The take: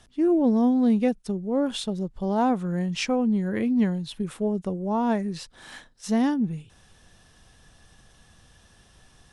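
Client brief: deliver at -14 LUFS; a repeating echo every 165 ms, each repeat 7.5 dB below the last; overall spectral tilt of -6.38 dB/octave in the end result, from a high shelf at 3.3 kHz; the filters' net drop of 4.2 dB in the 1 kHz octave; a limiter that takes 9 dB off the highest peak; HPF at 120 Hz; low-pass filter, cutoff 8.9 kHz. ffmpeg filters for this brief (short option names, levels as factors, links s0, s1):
-af "highpass=120,lowpass=8900,equalizer=f=1000:t=o:g=-5.5,highshelf=f=3300:g=-4,alimiter=limit=0.075:level=0:latency=1,aecho=1:1:165|330|495|660|825:0.422|0.177|0.0744|0.0312|0.0131,volume=5.62"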